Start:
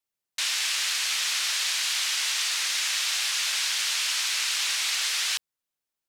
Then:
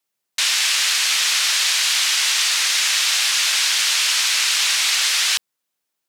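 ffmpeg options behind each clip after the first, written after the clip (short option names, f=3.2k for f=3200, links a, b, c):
-af "highpass=140,volume=8.5dB"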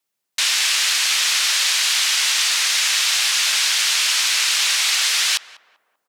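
-filter_complex "[0:a]asplit=2[a][b];[b]adelay=195,lowpass=f=900:p=1,volume=-13dB,asplit=2[c][d];[d]adelay=195,lowpass=f=900:p=1,volume=0.54,asplit=2[e][f];[f]adelay=195,lowpass=f=900:p=1,volume=0.54,asplit=2[g][h];[h]adelay=195,lowpass=f=900:p=1,volume=0.54,asplit=2[i][j];[j]adelay=195,lowpass=f=900:p=1,volume=0.54,asplit=2[k][l];[l]adelay=195,lowpass=f=900:p=1,volume=0.54[m];[a][c][e][g][i][k][m]amix=inputs=7:normalize=0"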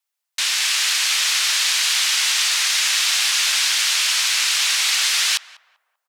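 -filter_complex "[0:a]acrossover=split=580[a][b];[a]acrusher=bits=6:dc=4:mix=0:aa=0.000001[c];[c][b]amix=inputs=2:normalize=0,dynaudnorm=f=110:g=11:m=3dB,volume=-2.5dB"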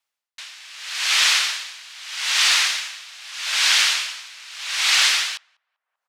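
-af "highshelf=f=6.8k:g=-12,aeval=exprs='val(0)*pow(10,-25*(0.5-0.5*cos(2*PI*0.8*n/s))/20)':c=same,volume=6dB"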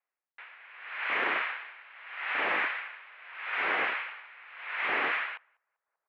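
-af "aeval=exprs='(mod(3.35*val(0)+1,2)-1)/3.35':c=same,highpass=f=440:t=q:w=0.5412,highpass=f=440:t=q:w=1.307,lowpass=f=2.4k:t=q:w=0.5176,lowpass=f=2.4k:t=q:w=0.7071,lowpass=f=2.4k:t=q:w=1.932,afreqshift=-120,acontrast=24,volume=-9dB"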